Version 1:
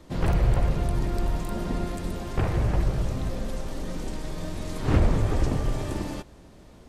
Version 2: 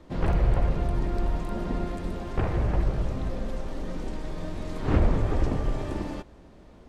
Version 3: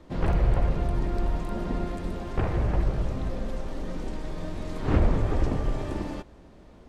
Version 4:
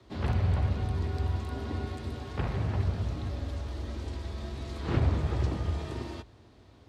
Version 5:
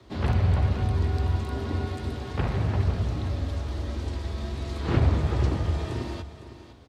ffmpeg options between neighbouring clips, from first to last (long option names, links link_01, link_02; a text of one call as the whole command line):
ffmpeg -i in.wav -af "lowpass=frequency=2500:poles=1,equalizer=frequency=120:width_type=o:width=0.91:gain=-4" out.wav
ffmpeg -i in.wav -af anull out.wav
ffmpeg -i in.wav -af "equalizer=frequency=125:width_type=o:width=1:gain=-4,equalizer=frequency=500:width_type=o:width=1:gain=-4,equalizer=frequency=4000:width_type=o:width=1:gain=7,afreqshift=47,volume=-4.5dB" out.wav
ffmpeg -i in.wav -af "aecho=1:1:507:0.224,volume=4.5dB" out.wav